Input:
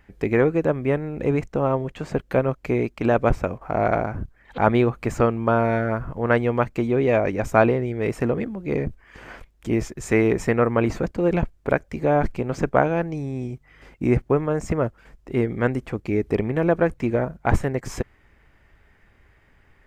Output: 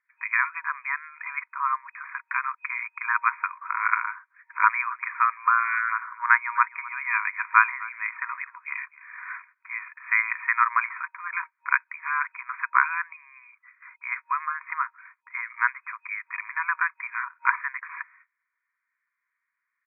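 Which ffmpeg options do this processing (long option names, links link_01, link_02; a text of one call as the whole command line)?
ffmpeg -i in.wav -filter_complex "[0:a]asplit=3[link_01][link_02][link_03];[link_01]afade=type=out:start_time=4.89:duration=0.02[link_04];[link_02]aecho=1:1:255:0.112,afade=type=in:start_time=4.89:duration=0.02,afade=type=out:start_time=9.78:duration=0.02[link_05];[link_03]afade=type=in:start_time=9.78:duration=0.02[link_06];[link_04][link_05][link_06]amix=inputs=3:normalize=0,agate=range=-25dB:threshold=-48dB:ratio=16:detection=peak,afftfilt=real='re*between(b*sr/4096,940,2500)':imag='im*between(b*sr/4096,940,2500)':win_size=4096:overlap=0.75,volume=7dB" out.wav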